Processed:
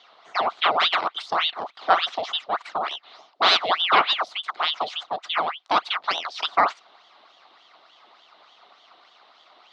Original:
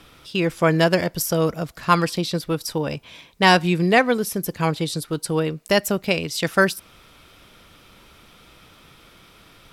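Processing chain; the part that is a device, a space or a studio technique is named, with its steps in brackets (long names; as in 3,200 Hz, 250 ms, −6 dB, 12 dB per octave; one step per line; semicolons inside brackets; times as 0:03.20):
0:03.51–0:04.16: dynamic equaliser 2,800 Hz, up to +5 dB, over −31 dBFS, Q 0.82
voice changer toy (ring modulator whose carrier an LFO sweeps 1,800 Hz, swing 85%, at 3.4 Hz; loudspeaker in its box 490–4,100 Hz, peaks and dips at 490 Hz −5 dB, 710 Hz +7 dB, 1,200 Hz +7 dB, 1,700 Hz −7 dB, 2,500 Hz −7 dB, 3,900 Hz +4 dB)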